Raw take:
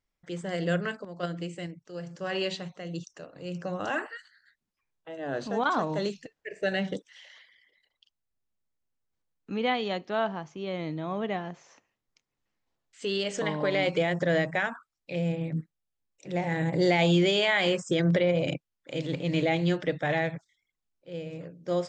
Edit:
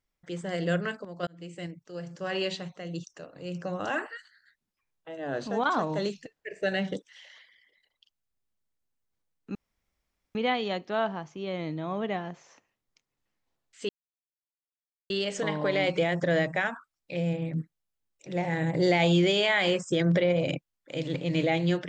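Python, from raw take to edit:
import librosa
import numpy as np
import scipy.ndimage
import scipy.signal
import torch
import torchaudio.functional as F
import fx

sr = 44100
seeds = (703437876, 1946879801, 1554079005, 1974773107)

y = fx.edit(x, sr, fx.fade_in_span(start_s=1.27, length_s=0.39),
    fx.insert_room_tone(at_s=9.55, length_s=0.8),
    fx.insert_silence(at_s=13.09, length_s=1.21), tone=tone)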